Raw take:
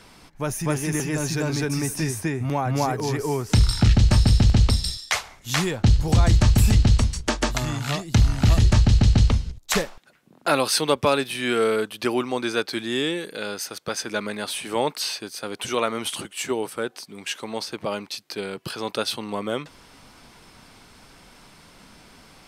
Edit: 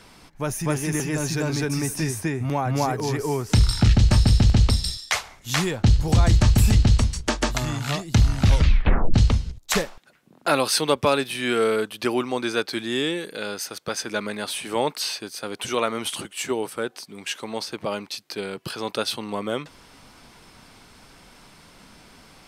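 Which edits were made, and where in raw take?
8.41 s: tape stop 0.73 s

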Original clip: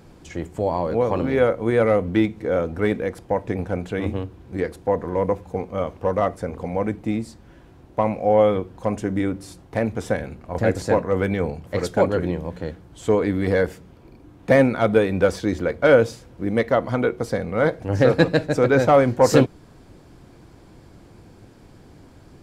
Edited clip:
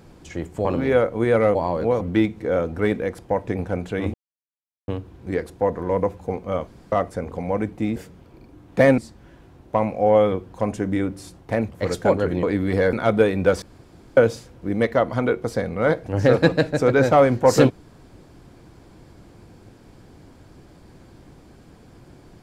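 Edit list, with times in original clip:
0.65–1.11 s: move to 2.01 s
4.14 s: insert silence 0.74 s
5.93–6.18 s: room tone
9.94–11.62 s: delete
12.35–13.17 s: delete
13.67–14.69 s: move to 7.22 s
15.38–15.93 s: room tone

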